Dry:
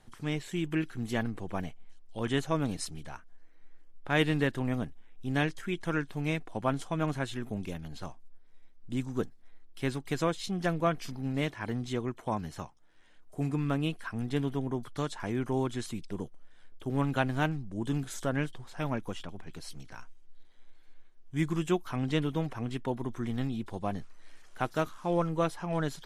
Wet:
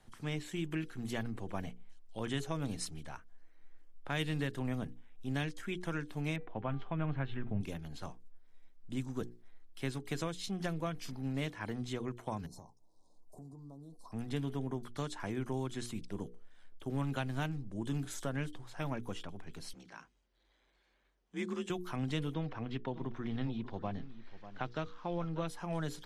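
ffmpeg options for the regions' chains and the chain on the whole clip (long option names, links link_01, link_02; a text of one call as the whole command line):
ffmpeg -i in.wav -filter_complex "[0:a]asettb=1/sr,asplit=3[link_01][link_02][link_03];[link_01]atrim=end=6.364[link_04];[link_02]atrim=start=6.36:end=7.61,asetpts=PTS-STARTPTS,afade=type=in:duration=0.004:curve=qsin,afade=type=out:start_time=1.246:duration=0.004:curve=qsin,lowpass=frequency=2900:width=0.5412,lowpass=frequency=2900:width=1.3066,bandreject=frequency=394.1:width_type=h:width=4,bandreject=frequency=788.2:width_type=h:width=4,bandreject=frequency=1182.3:width_type=h:width=4,bandreject=frequency=1576.4:width_type=h:width=4,bandreject=frequency=1970.5:width_type=h:width=4,bandreject=frequency=2364.6:width_type=h:width=4,bandreject=frequency=2758.7:width_type=h:width=4,bandreject=frequency=3152.8:width_type=h:width=4,bandreject=frequency=3546.9:width_type=h:width=4,bandreject=frequency=3941:width_type=h:width=4,bandreject=frequency=4335.1:width_type=h:width=4,bandreject=frequency=4729.2:width_type=h:width=4,bandreject=frequency=5123.3:width_type=h:width=4,bandreject=frequency=5517.4:width_type=h:width=4,bandreject=frequency=5911.5:width_type=h:width=4,bandreject=frequency=6305.6:width_type=h:width=4,bandreject=frequency=6699.7:width_type=h:width=4,bandreject=frequency=7093.8:width_type=h:width=4,bandreject=frequency=7487.9:width_type=h:width=4,bandreject=frequency=7882:width_type=h:width=4,bandreject=frequency=8276.1:width_type=h:width=4,bandreject=frequency=8670.2:width_type=h:width=4,bandreject=frequency=9064.3:width_type=h:width=4,bandreject=frequency=9458.4:width_type=h:width=4,bandreject=frequency=9852.5:width_type=h:width=4,bandreject=frequency=10246.6:width_type=h:width=4,bandreject=frequency=10640.7:width_type=h:width=4,bandreject=frequency=11034.8:width_type=h:width=4,asubboost=boost=5.5:cutoff=190[link_05];[link_03]atrim=start=7.606[link_06];[link_04][link_05]acrossfade=duration=0.004:curve1=hsin:curve2=qsin[link_07];[link_07][link_06]acrossfade=duration=0.004:curve1=qsin:curve2=hsin,asettb=1/sr,asplit=3[link_08][link_09][link_10];[link_08]atrim=end=12.464[link_11];[link_09]atrim=start=12.46:end=14.12,asetpts=PTS-STARTPTS,afade=type=in:duration=0.004:curve=qsin,afade=type=out:start_time=1.656:duration=0.004:curve=qsin,asuperstop=centerf=2100:order=12:qfactor=0.67,acompressor=threshold=-44dB:ratio=12:attack=3.2:release=140:knee=1:detection=peak[link_12];[link_10]atrim=start=14.116[link_13];[link_11][link_12]acrossfade=duration=0.004:curve1=hsin:curve2=qsin[link_14];[link_14][link_13]acrossfade=duration=0.004:curve1=qsin:curve2=hsin,asettb=1/sr,asplit=3[link_15][link_16][link_17];[link_15]atrim=end=19.734[link_18];[link_16]atrim=start=19.73:end=21.7,asetpts=PTS-STARTPTS,afade=type=in:duration=0.004:curve=qsin,afade=type=out:start_time=1.966:duration=0.004:curve=qsin,afreqshift=43,highpass=180,lowpass=6800,bandreject=frequency=50:width_type=h:width=6,bandreject=frequency=100:width_type=h:width=6,bandreject=frequency=150:width_type=h:width=6,bandreject=frequency=200:width_type=h:width=6,bandreject=frequency=250:width_type=h:width=6,bandreject=frequency=300:width_type=h:width=6,bandreject=frequency=350:width_type=h:width=6,bandreject=frequency=400:width_type=h:width=6[link_19];[link_17]atrim=start=21.696[link_20];[link_18][link_19]acrossfade=duration=0.004:curve1=hsin:curve2=qsin[link_21];[link_21][link_20]acrossfade=duration=0.004:curve1=qsin:curve2=hsin,asettb=1/sr,asplit=3[link_22][link_23][link_24];[link_22]atrim=end=22.344[link_25];[link_23]atrim=start=22.34:end=25.48,asetpts=PTS-STARTPTS,afade=type=in:duration=0.004:curve=qsin,afade=type=out:start_time=3.136:duration=0.004:curve=qsin,lowpass=frequency=4700:width=0.5412,lowpass=frequency=4700:width=1.3066,aecho=1:1:593:0.158,atrim=end_sample=138474[link_26];[link_24]atrim=start=25.476[link_27];[link_25][link_26]acrossfade=duration=0.004:curve1=hsin:curve2=qsin[link_28];[link_28][link_27]acrossfade=duration=0.004:curve1=qsin:curve2=hsin,bandreject=frequency=60:width_type=h:width=6,bandreject=frequency=120:width_type=h:width=6,bandreject=frequency=180:width_type=h:width=6,bandreject=frequency=240:width_type=h:width=6,bandreject=frequency=300:width_type=h:width=6,bandreject=frequency=360:width_type=h:width=6,bandreject=frequency=420:width_type=h:width=6,bandreject=frequency=480:width_type=h:width=6,acrossover=split=160|3000[link_29][link_30][link_31];[link_30]acompressor=threshold=-32dB:ratio=6[link_32];[link_29][link_32][link_31]amix=inputs=3:normalize=0,volume=-3dB" out.wav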